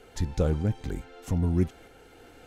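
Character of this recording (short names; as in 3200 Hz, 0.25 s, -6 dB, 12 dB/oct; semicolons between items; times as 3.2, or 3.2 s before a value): tremolo saw up 1.6 Hz, depth 30%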